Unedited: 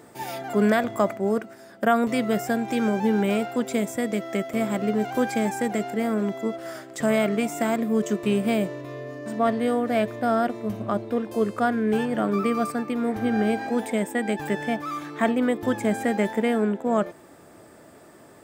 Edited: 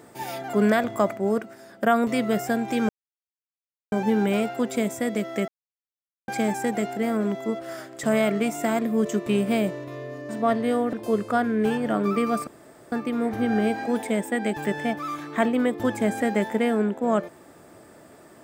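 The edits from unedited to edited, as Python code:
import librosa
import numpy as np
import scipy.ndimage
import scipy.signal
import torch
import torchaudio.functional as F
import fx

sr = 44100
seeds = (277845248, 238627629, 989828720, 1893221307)

y = fx.edit(x, sr, fx.insert_silence(at_s=2.89, length_s=1.03),
    fx.silence(start_s=4.45, length_s=0.8),
    fx.cut(start_s=9.9, length_s=1.31),
    fx.insert_room_tone(at_s=12.75, length_s=0.45), tone=tone)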